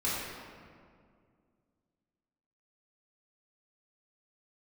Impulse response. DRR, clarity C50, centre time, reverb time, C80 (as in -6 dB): -9.0 dB, -2.0 dB, 0.123 s, 2.1 s, 0.0 dB